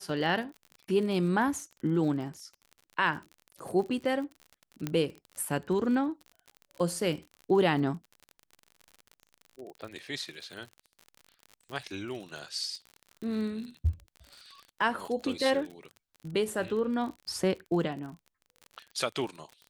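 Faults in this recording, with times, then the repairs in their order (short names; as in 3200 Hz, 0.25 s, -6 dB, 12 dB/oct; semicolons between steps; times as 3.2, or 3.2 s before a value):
crackle 47/s -38 dBFS
4.87 pop -17 dBFS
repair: de-click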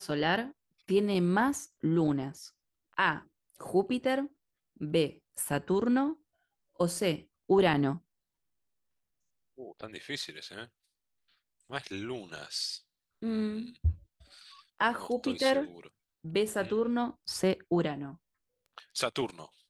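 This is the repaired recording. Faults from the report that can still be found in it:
4.87 pop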